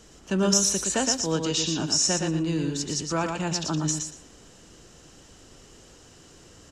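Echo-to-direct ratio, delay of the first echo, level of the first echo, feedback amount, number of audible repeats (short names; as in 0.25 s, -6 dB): -5.0 dB, 0.117 s, -5.0 dB, 19%, 3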